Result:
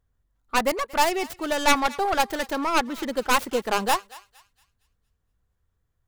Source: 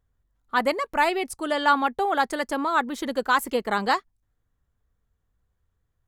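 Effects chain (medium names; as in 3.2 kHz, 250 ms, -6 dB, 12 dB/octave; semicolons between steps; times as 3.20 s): tracing distortion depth 0.4 ms; thinning echo 230 ms, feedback 37%, high-pass 1.2 kHz, level -18 dB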